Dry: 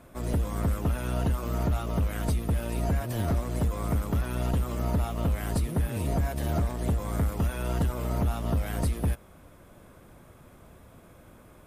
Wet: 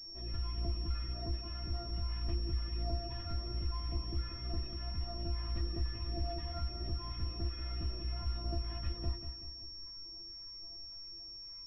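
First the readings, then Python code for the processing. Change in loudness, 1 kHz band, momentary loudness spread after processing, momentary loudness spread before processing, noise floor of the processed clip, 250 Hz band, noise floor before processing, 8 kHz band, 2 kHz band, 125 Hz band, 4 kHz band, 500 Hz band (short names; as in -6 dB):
-10.5 dB, -13.5 dB, 7 LU, 2 LU, -48 dBFS, -15.5 dB, -53 dBFS, under -25 dB, -15.0 dB, -11.0 dB, +5.0 dB, -14.5 dB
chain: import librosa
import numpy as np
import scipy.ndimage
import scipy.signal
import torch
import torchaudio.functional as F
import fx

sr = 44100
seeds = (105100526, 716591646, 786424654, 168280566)

p1 = fx.low_shelf(x, sr, hz=170.0, db=9.5)
p2 = fx.hum_notches(p1, sr, base_hz=50, count=7)
p3 = fx.phaser_stages(p2, sr, stages=2, low_hz=370.0, high_hz=2000.0, hz=1.8, feedback_pct=25)
p4 = fx.stiff_resonator(p3, sr, f0_hz=340.0, decay_s=0.22, stiffness=0.002)
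p5 = p4 + fx.echo_feedback(p4, sr, ms=189, feedback_pct=47, wet_db=-10.0, dry=0)
p6 = fx.rev_spring(p5, sr, rt60_s=2.6, pass_ms=(34,), chirp_ms=50, drr_db=15.0)
p7 = fx.pwm(p6, sr, carrier_hz=5500.0)
y = p7 * librosa.db_to_amplitude(2.5)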